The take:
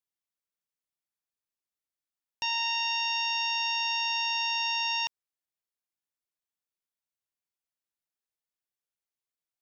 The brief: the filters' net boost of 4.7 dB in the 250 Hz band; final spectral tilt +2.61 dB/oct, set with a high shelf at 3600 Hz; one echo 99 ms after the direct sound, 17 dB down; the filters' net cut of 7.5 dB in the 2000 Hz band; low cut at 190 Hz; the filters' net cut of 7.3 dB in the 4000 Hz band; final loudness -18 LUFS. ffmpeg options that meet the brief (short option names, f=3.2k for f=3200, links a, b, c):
-af "highpass=190,equalizer=f=250:t=o:g=8,equalizer=f=2k:t=o:g=-6.5,highshelf=f=3.6k:g=-4,equalizer=f=4k:t=o:g=-5.5,aecho=1:1:99:0.141,volume=16dB"